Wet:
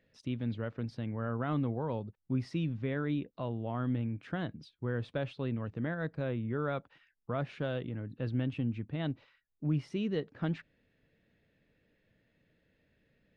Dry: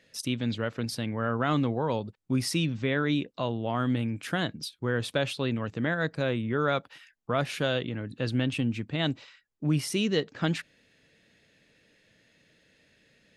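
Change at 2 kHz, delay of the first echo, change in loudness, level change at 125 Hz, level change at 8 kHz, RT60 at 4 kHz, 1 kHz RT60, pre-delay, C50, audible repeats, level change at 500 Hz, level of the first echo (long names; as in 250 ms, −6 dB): −11.0 dB, no echo audible, −6.5 dB, −4.0 dB, below −25 dB, no reverb audible, no reverb audible, no reverb audible, no reverb audible, no echo audible, −7.0 dB, no echo audible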